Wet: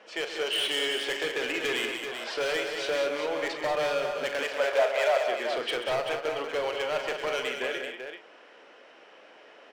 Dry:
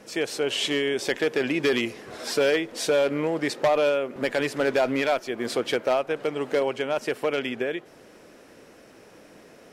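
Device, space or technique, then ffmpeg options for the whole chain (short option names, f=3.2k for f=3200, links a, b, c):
megaphone: -filter_complex "[0:a]highpass=610,lowpass=3.1k,equalizer=f=3k:t=o:w=0.23:g=8,asoftclip=type=hard:threshold=-26dB,asplit=2[a][b];[b]adelay=39,volume=-10dB[c];[a][c]amix=inputs=2:normalize=0,asettb=1/sr,asplit=3[d][e][f];[d]atrim=end=4.434[g];[e]atrim=start=4.43:end=5.22,asetpts=PTS-STARTPTS,afade=t=in:d=0.004:c=qsin,afade=t=out:st=0.786:d=0.004:c=qsin,lowshelf=f=380:t=q:w=3:g=-13[h];[f]atrim=start=5.216[i];[g][h]acrossfade=d=0.004:c1=hsin:c2=qsin[j];[j][i]acrossfade=d=0.004:c1=qsin:c2=hsin,aecho=1:1:131|189|386:0.299|0.447|0.422"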